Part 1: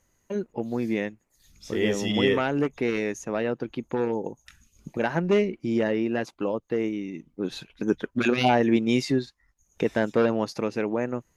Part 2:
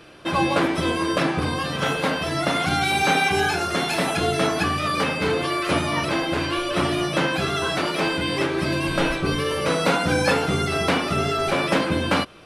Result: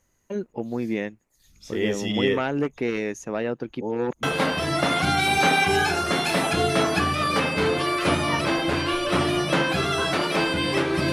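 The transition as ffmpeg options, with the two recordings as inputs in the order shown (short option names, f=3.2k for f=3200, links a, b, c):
-filter_complex "[0:a]apad=whole_dur=11.12,atrim=end=11.12,asplit=2[a][b];[a]atrim=end=3.812[c];[b]atrim=start=3.808:end=4.232,asetpts=PTS-STARTPTS,areverse[d];[1:a]atrim=start=1.868:end=8.76[e];[c][d]acrossfade=d=0.004:c1=hsin:c2=hsin[f];[f][e]acrossfade=d=0.004:c1=hsin:c2=hsin"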